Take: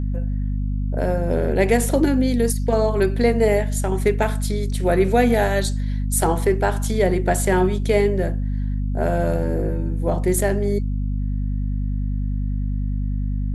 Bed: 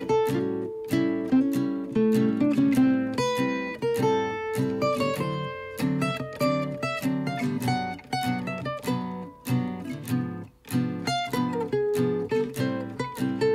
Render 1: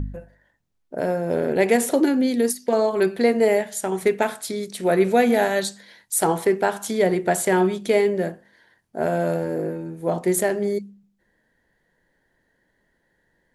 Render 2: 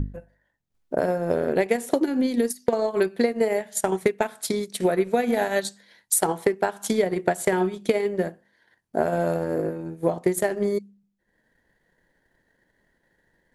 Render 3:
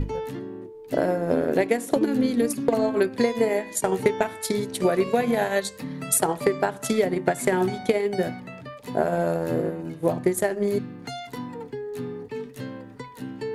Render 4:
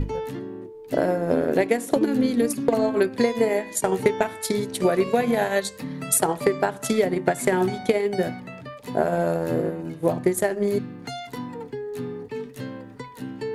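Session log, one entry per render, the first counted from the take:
de-hum 50 Hz, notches 5
transient shaper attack +8 dB, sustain -8 dB; compression, threshold -18 dBFS, peak gain reduction 11 dB
add bed -8 dB
trim +1 dB

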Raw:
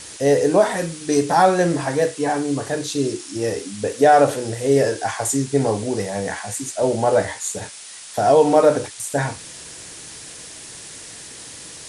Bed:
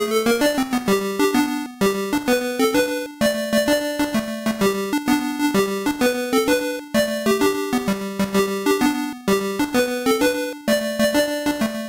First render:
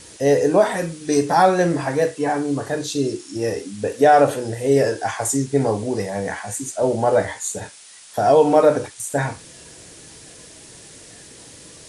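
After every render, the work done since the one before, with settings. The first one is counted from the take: noise print and reduce 6 dB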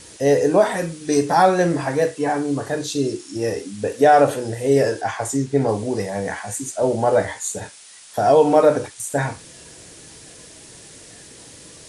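5.01–5.69 s: treble shelf 7.3 kHz -10.5 dB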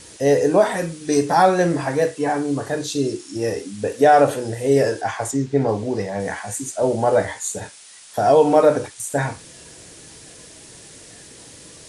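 5.31–6.20 s: distance through air 64 m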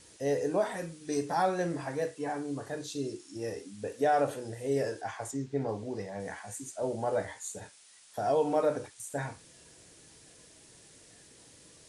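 trim -13.5 dB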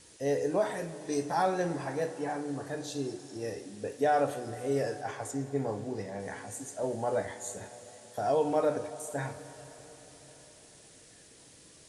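plate-style reverb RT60 4.7 s, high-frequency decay 1×, DRR 12 dB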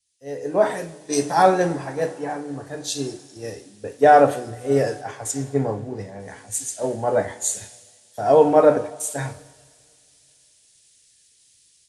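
level rider gain up to 8 dB; three bands expanded up and down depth 100%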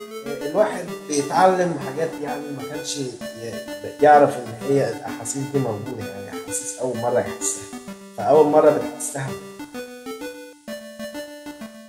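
add bed -14.5 dB

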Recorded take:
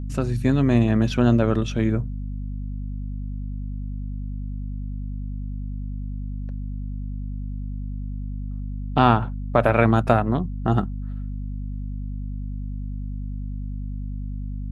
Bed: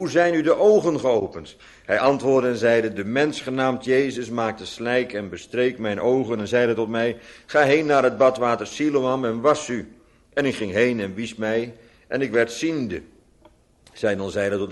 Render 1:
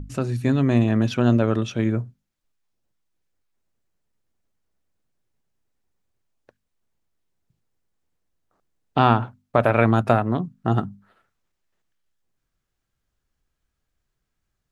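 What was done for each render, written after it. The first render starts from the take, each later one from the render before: hum notches 50/100/150/200/250 Hz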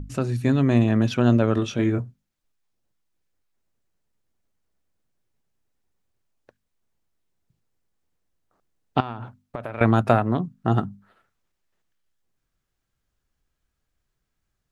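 1.55–2.00 s: doubling 21 ms -5.5 dB; 9.00–9.81 s: compression 8:1, threshold -28 dBFS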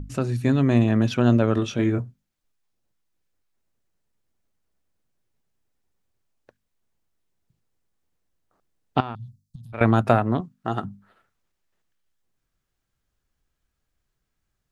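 9.15–9.73 s: inverse Chebyshev band-stop 330–2400 Hz; 10.40–10.84 s: bass shelf 320 Hz -11.5 dB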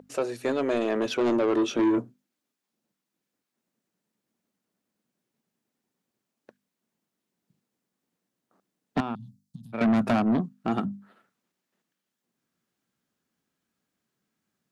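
high-pass sweep 490 Hz -> 210 Hz, 0.69–2.84 s; saturation -18.5 dBFS, distortion -8 dB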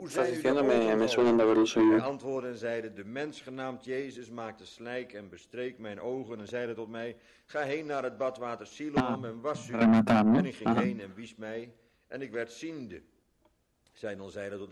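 add bed -16 dB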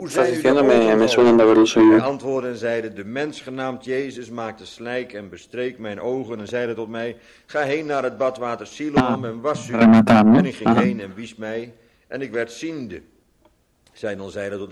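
trim +11 dB

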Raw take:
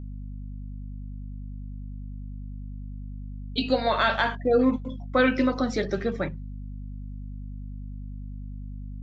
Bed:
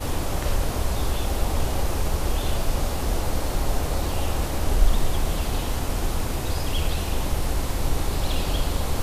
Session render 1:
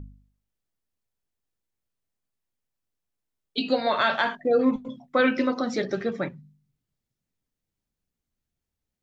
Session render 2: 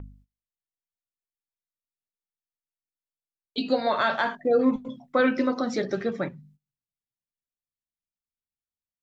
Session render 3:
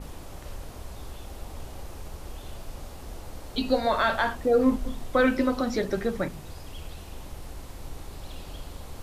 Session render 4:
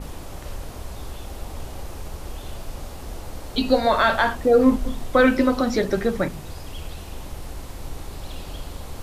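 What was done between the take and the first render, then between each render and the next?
de-hum 50 Hz, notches 5
gate -56 dBFS, range -20 dB; dynamic bell 2.8 kHz, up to -6 dB, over -40 dBFS, Q 1.3
add bed -15.5 dB
trim +5.5 dB

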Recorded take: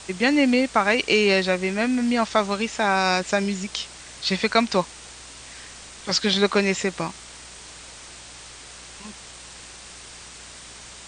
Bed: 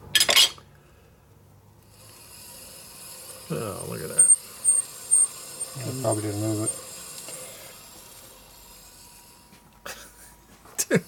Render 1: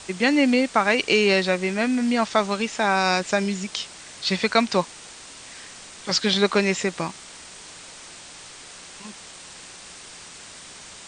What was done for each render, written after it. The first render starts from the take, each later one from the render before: de-hum 60 Hz, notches 2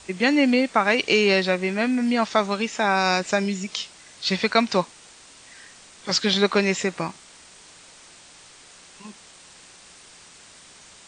noise print and reduce 6 dB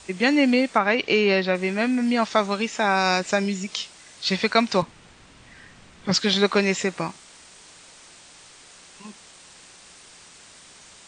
0.78–1.55 s: distance through air 140 m; 4.82–6.14 s: tone controls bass +12 dB, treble -11 dB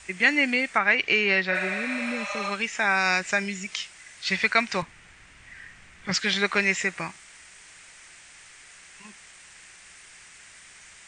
1.54–2.48 s: spectral replace 560–5600 Hz both; ten-band graphic EQ 125 Hz -4 dB, 250 Hz -8 dB, 500 Hz -7 dB, 1 kHz -5 dB, 2 kHz +8 dB, 4 kHz -7 dB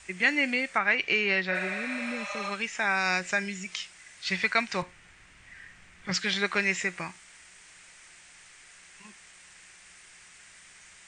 feedback comb 180 Hz, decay 0.27 s, harmonics all, mix 40%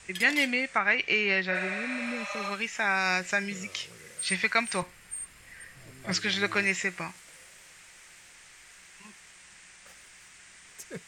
add bed -19.5 dB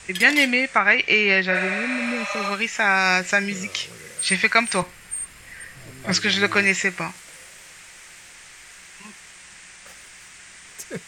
trim +8 dB

